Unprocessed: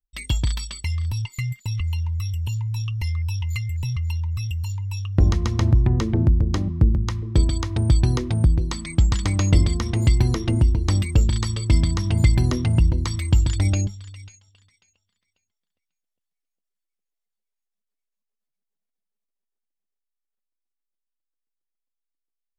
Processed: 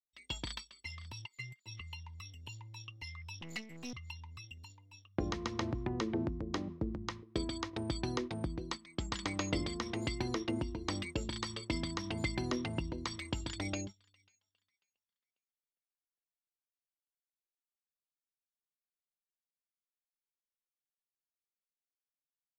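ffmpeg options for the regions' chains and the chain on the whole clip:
-filter_complex "[0:a]asettb=1/sr,asplit=3[a][b][c];[a]atrim=end=3.414[d];[b]atrim=start=3.41:end=3.93,asetpts=PTS-STARTPTS,afade=t=in:d=0.004:c=qsin,afade=t=out:st=0.516:d=0.004:c=qsin,aeval=exprs='abs(val(0))':c=same,highshelf=f=5.7k:g=4[e];[c]atrim=start=3.926[f];[d][e]acrossfade=d=0.004:c1=hsin:c2=qsin[g];[g][f]acrossfade=d=0.004:c1=qsin:c2=hsin,agate=range=-13dB:threshold=-26dB:ratio=16:detection=peak,acrossover=split=230 6500:gain=0.112 1 0.158[h][i][j];[h][i][j]amix=inputs=3:normalize=0,volume=-7dB"

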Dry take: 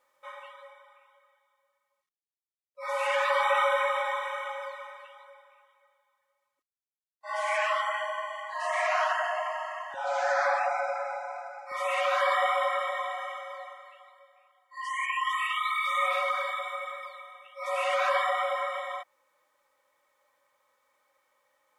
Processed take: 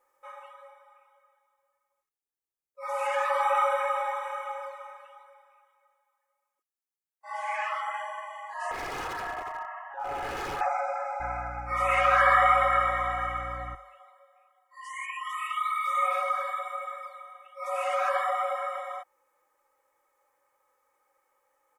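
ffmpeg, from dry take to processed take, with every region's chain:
-filter_complex "[0:a]asettb=1/sr,asplit=3[a][b][c];[a]atrim=end=5.194[d];[b]atrim=start=5.19:end=7.94,asetpts=PTS-STARTPTS,afade=t=in:d=0.004:c=qsin,afade=t=out:st=2.746:d=0.004:c=qsin,acrossover=split=4800[e][f];[f]acompressor=threshold=-56dB:ratio=4:attack=1:release=60[g];[e][g]amix=inputs=2:normalize=0,highpass=f=540:p=1[h];[c]atrim=start=7.936[i];[d][h]acrossfade=d=0.004:c1=hsin:c2=qsin[j];[j][i]acrossfade=d=0.004:c1=qsin:c2=hsin,asettb=1/sr,asplit=3[k][l][m];[k]atrim=end=8.714[n];[l]atrim=start=8.71:end=10.61,asetpts=PTS-STARTPTS,afade=t=in:d=0.004:c=qsin,afade=t=out:st=1.896:d=0.004:c=qsin,highpass=600,lowpass=2.1k,aeval=exprs='0.0376*(abs(mod(val(0)/0.0376+3,4)-2)-1)':c=same[o];[m]atrim=start=10.606[p];[n][o]acrossfade=d=0.004:c1=hsin:c2=qsin[q];[q][p]acrossfade=d=0.004:c1=qsin:c2=hsin,asettb=1/sr,asplit=3[r][s][t];[r]atrim=end=11.204[u];[s]atrim=start=11.2:end=13.75,asetpts=PTS-STARTPTS,afade=t=in:d=0.004:c=qsin,afade=t=out:st=2.546:d=0.004:c=qsin,aeval=exprs='val(0)+0.00891*(sin(2*PI*60*n/s)+sin(2*PI*2*60*n/s)/2+sin(2*PI*3*60*n/s)/3+sin(2*PI*4*60*n/s)/4+sin(2*PI*5*60*n/s)/5)':c=same,equalizer=f=1.8k:t=o:w=1.6:g=10.5[v];[t]atrim=start=13.746[w];[u][v]acrossfade=d=0.004:c1=hsin:c2=qsin[x];[x][w]acrossfade=d=0.004:c1=qsin:c2=hsin,equalizer=f=3.7k:t=o:w=1.1:g=-11.5,bandreject=f=50:t=h:w=6,bandreject=f=100:t=h:w=6,bandreject=f=150:t=h:w=6,aecho=1:1:2.4:0.55"

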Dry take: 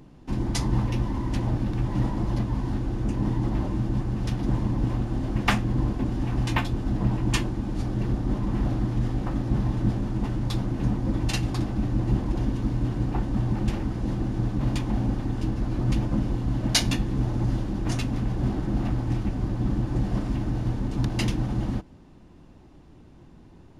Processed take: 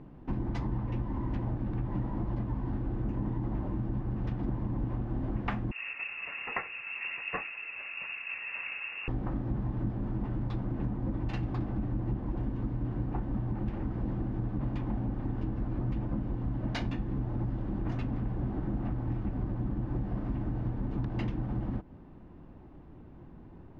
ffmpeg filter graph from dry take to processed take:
-filter_complex "[0:a]asettb=1/sr,asplit=3[a][b][c];[a]atrim=end=5.714[d];[b]atrim=start=5.71:end=9.08,asetpts=PTS-STARTPTS,afade=t=in:d=0.004:c=qsin,afade=t=out:st=3.366:d=0.004:c=qsin,highpass=220,lowpass=f=2.5k:t=q:w=0.5098,lowpass=f=2.5k:t=q:w=0.6013,lowpass=f=2.5k:t=q:w=0.9,lowpass=f=2.5k:t=q:w=2.563,afreqshift=-2900[e];[c]atrim=start=9.076[f];[d][e]acrossfade=d=0.004:c1=hsin:c2=qsin[g];[g][f]acrossfade=d=0.004:c1=qsin:c2=hsin,lowpass=1.8k,acompressor=threshold=-29dB:ratio=6"

